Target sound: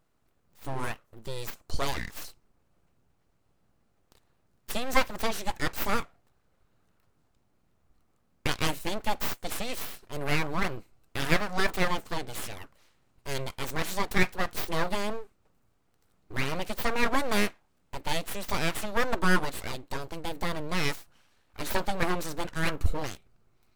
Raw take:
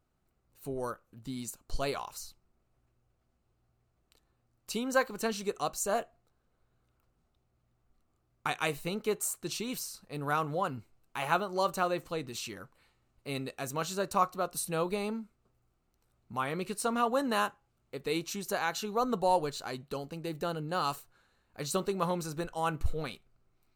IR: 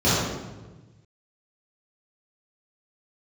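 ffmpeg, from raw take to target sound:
-af "aeval=exprs='abs(val(0))':c=same,volume=2"

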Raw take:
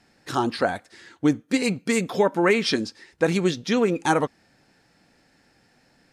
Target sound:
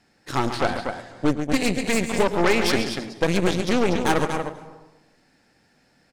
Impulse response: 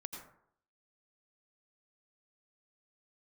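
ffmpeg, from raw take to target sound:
-filter_complex "[0:a]aecho=1:1:137|239.1:0.316|0.447,aeval=exprs='0.501*(cos(1*acos(clip(val(0)/0.501,-1,1)))-cos(1*PI/2))+0.0794*(cos(8*acos(clip(val(0)/0.501,-1,1)))-cos(8*PI/2))':c=same,asplit=2[s0][s1];[1:a]atrim=start_sample=2205,asetrate=28224,aresample=44100,adelay=110[s2];[s1][s2]afir=irnorm=-1:irlink=0,volume=0.2[s3];[s0][s3]amix=inputs=2:normalize=0,volume=0.794"

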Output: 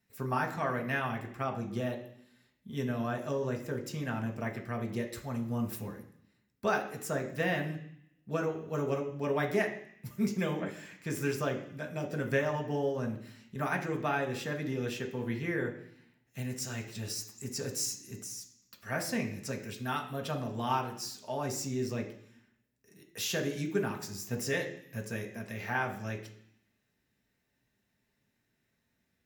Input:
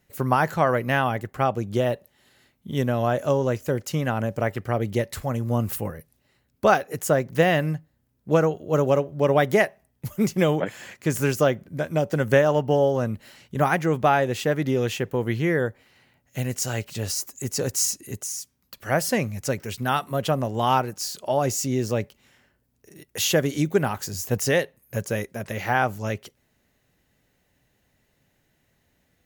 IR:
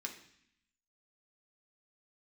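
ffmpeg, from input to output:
-filter_complex "[1:a]atrim=start_sample=2205[s0];[0:a][s0]afir=irnorm=-1:irlink=0,volume=0.398"

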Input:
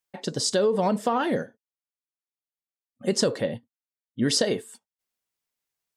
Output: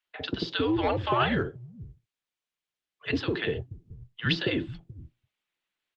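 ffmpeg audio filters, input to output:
-filter_complex "[0:a]highshelf=f=2500:g=11,acrossover=split=160|320|850[s0][s1][s2][s3];[s0]acompressor=threshold=0.00891:ratio=4[s4];[s1]acompressor=threshold=0.0224:ratio=4[s5];[s2]acompressor=threshold=0.0224:ratio=4[s6];[s3]acompressor=threshold=0.1:ratio=4[s7];[s4][s5][s6][s7]amix=inputs=4:normalize=0,asplit=2[s8][s9];[s9]acrusher=bits=4:mode=log:mix=0:aa=0.000001,volume=0.473[s10];[s8][s10]amix=inputs=2:normalize=0,acrossover=split=180|850[s11][s12][s13];[s12]adelay=50[s14];[s11]adelay=480[s15];[s15][s14][s13]amix=inputs=3:normalize=0,highpass=f=190:t=q:w=0.5412,highpass=f=190:t=q:w=1.307,lowpass=f=3600:t=q:w=0.5176,lowpass=f=3600:t=q:w=0.7071,lowpass=f=3600:t=q:w=1.932,afreqshift=-110" -ar 48000 -c:a libopus -b:a 24k

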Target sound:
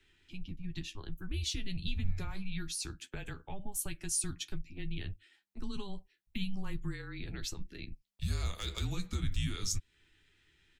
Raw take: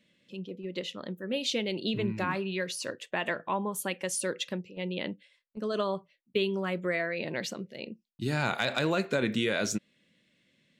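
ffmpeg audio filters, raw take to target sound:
-filter_complex "[0:a]afreqshift=-200,asplit=2[s0][s1];[s1]adelay=12,volume=0.447[s2];[s0][s2]amix=inputs=2:normalize=0,acrossover=split=150|4100[s3][s4][s5];[s4]acompressor=threshold=0.00398:ratio=5[s6];[s3][s6][s5]amix=inputs=3:normalize=0"

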